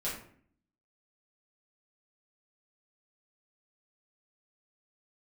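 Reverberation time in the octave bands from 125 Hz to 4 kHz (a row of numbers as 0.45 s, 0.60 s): 0.75 s, 0.80 s, 0.60 s, 0.50 s, 0.50 s, 0.35 s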